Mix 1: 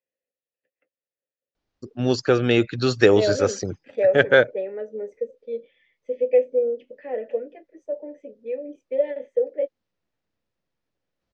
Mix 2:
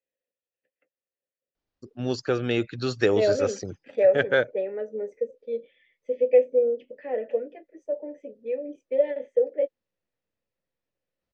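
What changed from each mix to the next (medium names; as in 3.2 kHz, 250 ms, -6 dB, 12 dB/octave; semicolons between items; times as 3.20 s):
first voice -6.5 dB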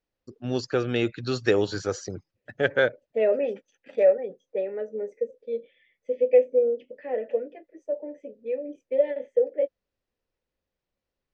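first voice: entry -1.55 s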